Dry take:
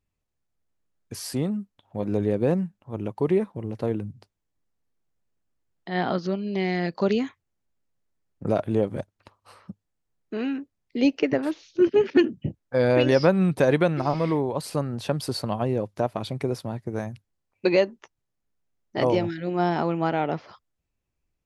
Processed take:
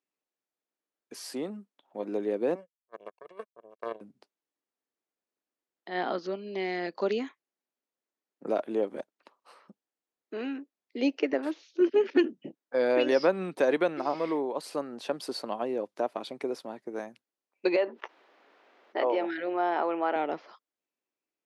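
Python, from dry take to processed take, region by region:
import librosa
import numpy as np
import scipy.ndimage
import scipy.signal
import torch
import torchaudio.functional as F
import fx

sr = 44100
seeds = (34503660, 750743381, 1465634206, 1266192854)

y = fx.chain(x, sr, fx.power_curve(exponent=3.0),
    fx.over_compress(threshold_db=-34.0, ratio=-0.5),
    fx.comb(ms=1.8, depth=0.84), at=(2.55, 4.01))
y = fx.chain(y, sr, fx.highpass(hz=470.0, slope=12),
    fx.air_absorb(metres=330.0),
    fx.env_flatten(amount_pct=50), at=(17.76, 20.16))
y = scipy.signal.sosfilt(scipy.signal.butter(4, 270.0, 'highpass', fs=sr, output='sos'), y)
y = fx.high_shelf(y, sr, hz=9200.0, db=-9.0)
y = y * 10.0 ** (-4.0 / 20.0)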